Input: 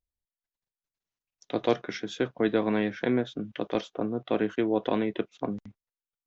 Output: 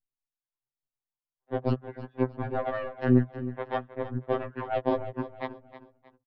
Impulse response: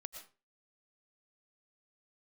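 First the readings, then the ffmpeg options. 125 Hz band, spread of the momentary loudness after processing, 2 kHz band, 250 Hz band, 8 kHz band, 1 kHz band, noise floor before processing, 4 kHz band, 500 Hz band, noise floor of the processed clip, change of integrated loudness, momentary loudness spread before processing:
+8.0 dB, 13 LU, -4.0 dB, -2.0 dB, n/a, +1.5 dB, under -85 dBFS, -10.5 dB, -2.0 dB, under -85 dBFS, -1.0 dB, 9 LU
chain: -filter_complex "[0:a]lowpass=f=1.3k:w=0.5412,lowpass=f=1.3k:w=1.3066,aecho=1:1:1.1:0.33,aeval=exprs='0.251*(cos(1*acos(clip(val(0)/0.251,-1,1)))-cos(1*PI/2))+0.00355*(cos(4*acos(clip(val(0)/0.251,-1,1)))-cos(4*PI/2))+0.0251*(cos(7*acos(clip(val(0)/0.251,-1,1)))-cos(7*PI/2))':c=same,acrossover=split=720[a][b];[a]aeval=exprs='val(0)*(1-0.7/2+0.7/2*cos(2*PI*1.2*n/s))':c=same[c];[b]aeval=exprs='val(0)*(1-0.7/2-0.7/2*cos(2*PI*1.2*n/s))':c=same[d];[c][d]amix=inputs=2:normalize=0,asplit=2[e][f];[f]aecho=0:1:314|628|942:0.2|0.0698|0.0244[g];[e][g]amix=inputs=2:normalize=0,afftfilt=real='re*2.45*eq(mod(b,6),0)':imag='im*2.45*eq(mod(b,6),0)':win_size=2048:overlap=0.75,volume=8dB"

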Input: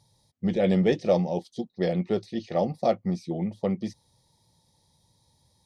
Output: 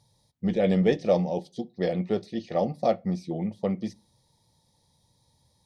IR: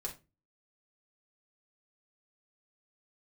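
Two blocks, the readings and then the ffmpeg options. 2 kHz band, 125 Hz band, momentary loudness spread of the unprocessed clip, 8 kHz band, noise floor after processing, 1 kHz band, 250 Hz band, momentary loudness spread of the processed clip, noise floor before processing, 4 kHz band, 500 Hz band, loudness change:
-0.5 dB, -1.0 dB, 9 LU, n/a, -69 dBFS, 0.0 dB, -0.5 dB, 10 LU, -68 dBFS, -1.0 dB, 0.0 dB, -0.5 dB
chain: -filter_complex "[0:a]asplit=2[a][b];[1:a]atrim=start_sample=2205,lowpass=5k[c];[b][c]afir=irnorm=-1:irlink=0,volume=-12.5dB[d];[a][d]amix=inputs=2:normalize=0,volume=-1.5dB"

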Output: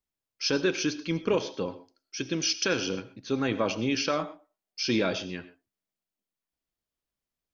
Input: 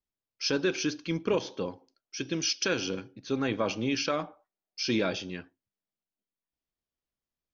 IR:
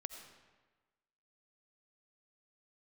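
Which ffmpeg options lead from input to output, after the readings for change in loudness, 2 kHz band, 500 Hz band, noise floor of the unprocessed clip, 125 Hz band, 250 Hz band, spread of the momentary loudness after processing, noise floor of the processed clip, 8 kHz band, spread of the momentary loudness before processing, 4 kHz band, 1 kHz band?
+1.5 dB, +1.5 dB, +1.5 dB, under -85 dBFS, +1.5 dB, +1.5 dB, 11 LU, under -85 dBFS, n/a, 11 LU, +1.5 dB, +2.0 dB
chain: -filter_complex "[0:a]asplit=2[a][b];[1:a]atrim=start_sample=2205,atrim=end_sample=6174[c];[b][c]afir=irnorm=-1:irlink=0,volume=5dB[d];[a][d]amix=inputs=2:normalize=0,volume=-5dB"

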